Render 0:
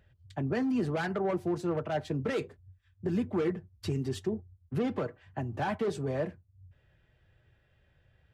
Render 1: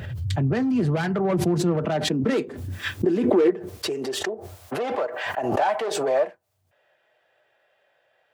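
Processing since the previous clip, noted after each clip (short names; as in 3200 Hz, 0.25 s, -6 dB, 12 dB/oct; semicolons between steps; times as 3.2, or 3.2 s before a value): self-modulated delay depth 0.07 ms; high-pass sweep 110 Hz -> 640 Hz, 0.67–4.61; backwards sustainer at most 34 dB/s; gain +5 dB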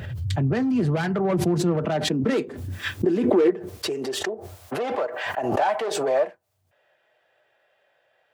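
nothing audible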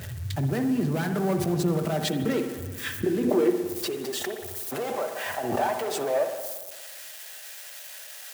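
switching spikes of -25.5 dBFS; on a send at -6.5 dB: reverb RT60 1.4 s, pre-delay 57 ms; on the sum: gain -4.5 dB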